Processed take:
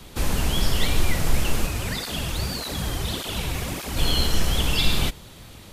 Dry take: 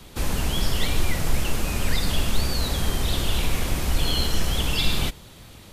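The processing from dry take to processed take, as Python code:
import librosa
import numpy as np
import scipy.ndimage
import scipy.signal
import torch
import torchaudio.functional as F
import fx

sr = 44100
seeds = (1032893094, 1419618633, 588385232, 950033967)

y = fx.flanger_cancel(x, sr, hz=1.7, depth_ms=5.3, at=(1.66, 3.96), fade=0.02)
y = y * librosa.db_to_amplitude(1.5)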